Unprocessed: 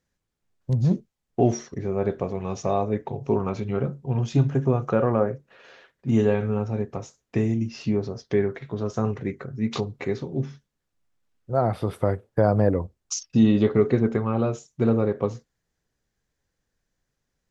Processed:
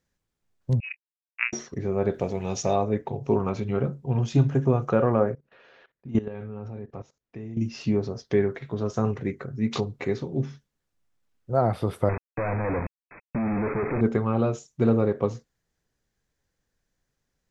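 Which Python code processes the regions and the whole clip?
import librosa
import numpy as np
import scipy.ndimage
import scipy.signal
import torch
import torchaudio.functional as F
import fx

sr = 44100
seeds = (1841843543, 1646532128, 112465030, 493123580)

y = fx.chain(x, sr, fx.power_curve(exponent=3.0),
    fx.freq_invert(carrier_hz=2700),
    fx.highpass(hz=620.0, slope=6), at=(0.8, 1.53))
y = fx.chain(y, sr, fx.high_shelf(hz=2800.0, db=9.5),
    fx.notch(hz=1100.0, q=6.1), at=(2.14, 2.76))
y = fx.chain(y, sr, fx.level_steps(step_db=18),
    fx.air_absorb(metres=140.0), at=(5.34, 7.57))
y = fx.chain(y, sr, fx.level_steps(step_db=13),
    fx.quant_companded(bits=2),
    fx.brickwall_lowpass(high_hz=2600.0), at=(12.09, 14.01))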